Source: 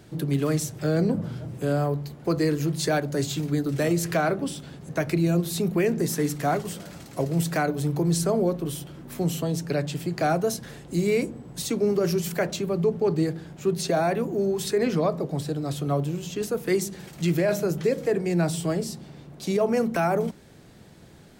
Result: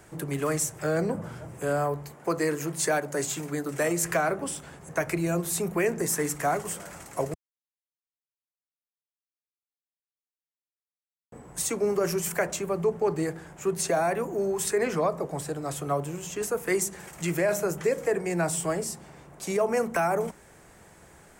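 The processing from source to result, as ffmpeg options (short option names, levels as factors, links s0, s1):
-filter_complex "[0:a]asettb=1/sr,asplit=3[s0][s1][s2];[s0]atrim=end=2.114[s3];[s1]atrim=start=2.11:end=4.03,asetpts=PTS-STARTPTS,afade=t=in:d=0.004:c=qsin,afade=t=out:st=1.916:d=0.004:c=qsin,highpass=140[s4];[s2]atrim=start=4.026[s5];[s3][s4]acrossfade=d=0.004:c1=hsin:c2=qsin[s6];[s6][s5]acrossfade=d=0.004:c1=qsin:c2=hsin,asplit=3[s7][s8][s9];[s7]atrim=end=7.34,asetpts=PTS-STARTPTS,afade=t=out:st=7.336:d=0.004:c=hsin[s10];[s8]atrim=start=7.34:end=11.32,asetpts=PTS-STARTPTS,volume=0[s11];[s9]atrim=start=11.32,asetpts=PTS-STARTPTS,afade=t=in:d=0.004:c=hsin[s12];[s10][s11][s12]concat=n=3:v=0:a=1,equalizer=f=125:t=o:w=1:g=-7,equalizer=f=250:t=o:w=1:g=-7,equalizer=f=1000:t=o:w=1:g=5,equalizer=f=2000:t=o:w=1:g=4,equalizer=f=4000:t=o:w=1:g=-10,equalizer=f=8000:t=o:w=1:g=8,acrossover=split=450|3000[s13][s14][s15];[s14]acompressor=threshold=0.0631:ratio=6[s16];[s13][s16][s15]amix=inputs=3:normalize=0"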